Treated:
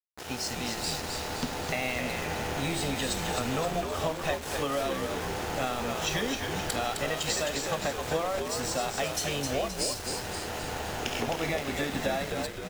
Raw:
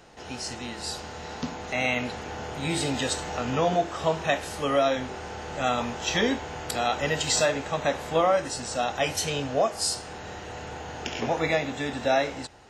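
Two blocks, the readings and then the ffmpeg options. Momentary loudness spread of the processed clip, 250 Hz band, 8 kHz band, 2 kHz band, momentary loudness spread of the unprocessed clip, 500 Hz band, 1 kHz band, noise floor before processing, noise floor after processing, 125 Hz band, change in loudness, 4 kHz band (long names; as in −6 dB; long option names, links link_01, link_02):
4 LU, −3.0 dB, −1.5 dB, −3.0 dB, 12 LU, −5.0 dB, −4.5 dB, −40 dBFS, −38 dBFS, −1.5 dB, −3.5 dB, −1.5 dB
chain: -filter_complex "[0:a]acompressor=threshold=-30dB:ratio=10,aeval=exprs='val(0)*gte(abs(val(0)),0.0119)':channel_layout=same,asplit=8[link_01][link_02][link_03][link_04][link_05][link_06][link_07][link_08];[link_02]adelay=261,afreqshift=-85,volume=-5dB[link_09];[link_03]adelay=522,afreqshift=-170,volume=-10.7dB[link_10];[link_04]adelay=783,afreqshift=-255,volume=-16.4dB[link_11];[link_05]adelay=1044,afreqshift=-340,volume=-22dB[link_12];[link_06]adelay=1305,afreqshift=-425,volume=-27.7dB[link_13];[link_07]adelay=1566,afreqshift=-510,volume=-33.4dB[link_14];[link_08]adelay=1827,afreqshift=-595,volume=-39.1dB[link_15];[link_01][link_09][link_10][link_11][link_12][link_13][link_14][link_15]amix=inputs=8:normalize=0,volume=2.5dB"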